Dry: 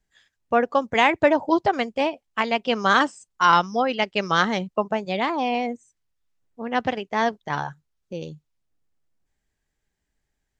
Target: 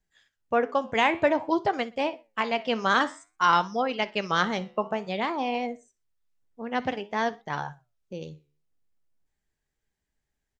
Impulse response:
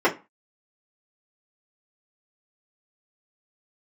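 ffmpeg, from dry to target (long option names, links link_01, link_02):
-filter_complex "[0:a]aecho=1:1:61|122:0.0891|0.0276,flanger=delay=5.2:depth=8.8:regen=83:speed=0.53:shape=triangular,asplit=2[link_01][link_02];[1:a]atrim=start_sample=2205[link_03];[link_02][link_03]afir=irnorm=-1:irlink=0,volume=-40.5dB[link_04];[link_01][link_04]amix=inputs=2:normalize=0"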